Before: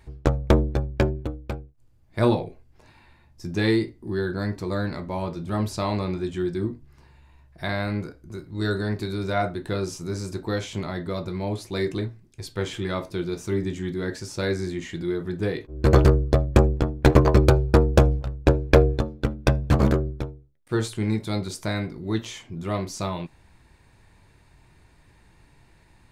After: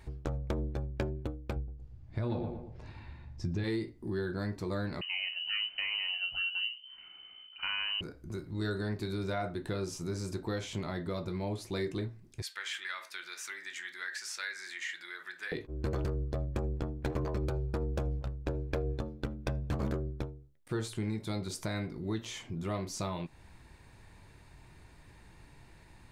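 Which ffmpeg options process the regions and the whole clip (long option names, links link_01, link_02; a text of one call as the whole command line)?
ffmpeg -i in.wav -filter_complex "[0:a]asettb=1/sr,asplit=3[link_01][link_02][link_03];[link_01]atrim=end=1.564[link_04];[link_02]atrim=start=1.56:end=3.64,asetpts=PTS-STARTPTS,afade=type=in:duration=0.004:curve=qsin,afade=type=out:start_time=2.076:duration=0.004:curve=qsin,lowpass=5500,equalizer=frequency=64:width_type=o:width=2.9:gain=12,asplit=2[link_05][link_06];[link_06]adelay=116,lowpass=frequency=2000:poles=1,volume=-11.5dB,asplit=2[link_07][link_08];[link_08]adelay=116,lowpass=frequency=2000:poles=1,volume=0.32,asplit=2[link_09][link_10];[link_10]adelay=116,lowpass=frequency=2000:poles=1,volume=0.32[link_11];[link_05][link_07][link_09][link_11]amix=inputs=4:normalize=0,atrim=end_sample=91728[link_12];[link_03]atrim=start=3.636[link_13];[link_04][link_12]acrossfade=duration=0.004:curve1=hsin:curve2=qsin[link_14];[link_14][link_13]acrossfade=duration=0.004:curve1=qsin:curve2=hsin,asettb=1/sr,asplit=3[link_15][link_16][link_17];[link_15]atrim=end=5.014[link_18];[link_16]atrim=start=5.01:end=8.01,asetpts=PTS-STARTPTS,afade=type=in:duration=0.004:curve=qsin,afade=type=out:start_time=2.996:duration=0.004:curve=qsin,lowpass=frequency=2600:width_type=q:width=0.5098,lowpass=frequency=2600:width_type=q:width=0.6013,lowpass=frequency=2600:width_type=q:width=0.9,lowpass=frequency=2600:width_type=q:width=2.563,afreqshift=-3100,asubboost=boost=9:cutoff=200[link_19];[link_17]atrim=start=8.006[link_20];[link_18][link_19]acrossfade=duration=0.004:curve1=hsin:curve2=qsin[link_21];[link_21][link_20]acrossfade=duration=0.004:curve1=qsin:curve2=hsin,asettb=1/sr,asplit=3[link_22][link_23][link_24];[link_22]atrim=end=12.424[link_25];[link_23]atrim=start=12.42:end=15.52,asetpts=PTS-STARTPTS,afade=type=in:duration=0.004:curve=qsin,afade=type=out:start_time=3.096:duration=0.004:curve=qsin,acompressor=threshold=-30dB:ratio=2:attack=3.2:release=140:knee=1:detection=peak,highpass=frequency=1700:width_type=q:width=2.5[link_26];[link_24]atrim=start=15.516[link_27];[link_25][link_26]acrossfade=duration=0.004:curve1=hsin:curve2=qsin[link_28];[link_28][link_27]acrossfade=duration=0.004:curve1=qsin:curve2=hsin,alimiter=limit=-15.5dB:level=0:latency=1:release=92,acompressor=threshold=-38dB:ratio=2" out.wav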